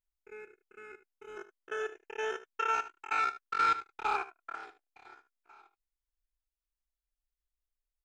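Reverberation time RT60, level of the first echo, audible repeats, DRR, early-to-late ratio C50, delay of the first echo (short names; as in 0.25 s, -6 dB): none, -14.5 dB, 1, none, none, 76 ms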